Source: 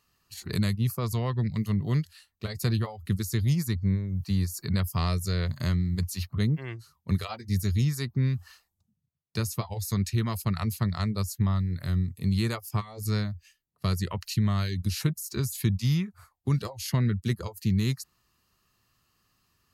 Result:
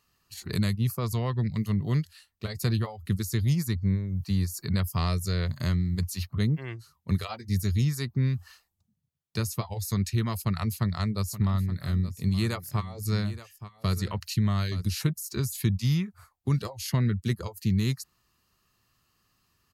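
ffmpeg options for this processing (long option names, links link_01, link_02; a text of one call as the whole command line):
ffmpeg -i in.wav -filter_complex "[0:a]asplit=3[link_01][link_02][link_03];[link_01]afade=type=out:start_time=11.24:duration=0.02[link_04];[link_02]aecho=1:1:874:0.2,afade=type=in:start_time=11.24:duration=0.02,afade=type=out:start_time=14.84:duration=0.02[link_05];[link_03]afade=type=in:start_time=14.84:duration=0.02[link_06];[link_04][link_05][link_06]amix=inputs=3:normalize=0" out.wav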